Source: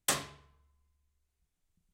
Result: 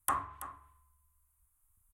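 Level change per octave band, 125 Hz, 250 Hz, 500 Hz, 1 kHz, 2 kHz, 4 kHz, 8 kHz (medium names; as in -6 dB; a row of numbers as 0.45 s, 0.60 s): -4.0 dB, -6.0 dB, -8.0 dB, +7.0 dB, -5.5 dB, -17.5 dB, -7.5 dB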